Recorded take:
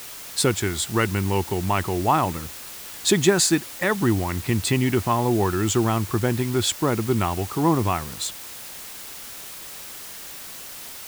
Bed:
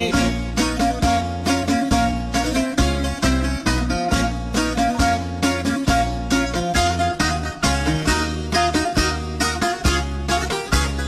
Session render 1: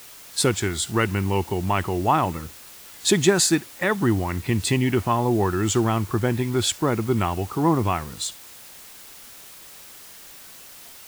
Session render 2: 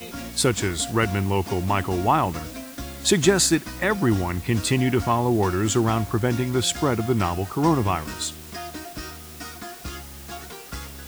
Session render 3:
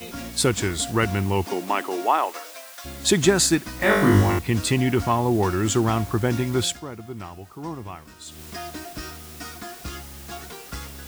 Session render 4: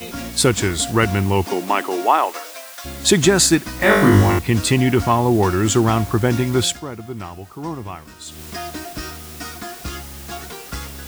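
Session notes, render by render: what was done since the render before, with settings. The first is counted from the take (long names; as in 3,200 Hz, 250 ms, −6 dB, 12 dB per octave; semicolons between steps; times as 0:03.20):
noise reduction from a noise print 6 dB
mix in bed −17 dB
0:01.45–0:02.84: high-pass filter 200 Hz → 710 Hz 24 dB per octave; 0:03.78–0:04.39: flutter between parallel walls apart 3.4 metres, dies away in 0.77 s; 0:06.64–0:08.41: duck −13.5 dB, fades 0.16 s
level +5 dB; brickwall limiter −2 dBFS, peak gain reduction 3 dB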